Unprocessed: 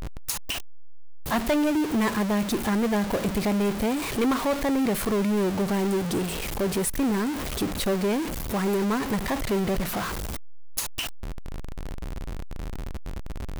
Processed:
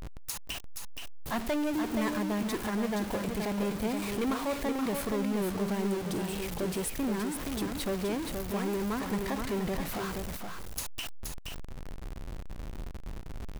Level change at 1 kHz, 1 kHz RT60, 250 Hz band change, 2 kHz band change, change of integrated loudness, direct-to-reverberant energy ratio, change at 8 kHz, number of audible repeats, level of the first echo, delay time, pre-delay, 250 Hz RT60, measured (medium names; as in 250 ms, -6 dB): -6.5 dB, no reverb, -6.5 dB, -6.5 dB, -7.0 dB, no reverb, -6.5 dB, 1, -5.5 dB, 474 ms, no reverb, no reverb